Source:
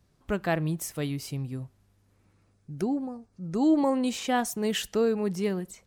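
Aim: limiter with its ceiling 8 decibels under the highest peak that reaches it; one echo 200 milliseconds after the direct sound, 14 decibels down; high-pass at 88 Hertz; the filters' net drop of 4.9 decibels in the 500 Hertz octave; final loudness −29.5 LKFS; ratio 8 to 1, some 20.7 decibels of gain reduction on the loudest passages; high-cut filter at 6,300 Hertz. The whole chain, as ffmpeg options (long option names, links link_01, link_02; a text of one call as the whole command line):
ffmpeg -i in.wav -af "highpass=88,lowpass=6300,equalizer=frequency=500:width_type=o:gain=-6,acompressor=threshold=-43dB:ratio=8,alimiter=level_in=15dB:limit=-24dB:level=0:latency=1,volume=-15dB,aecho=1:1:200:0.2,volume=18dB" out.wav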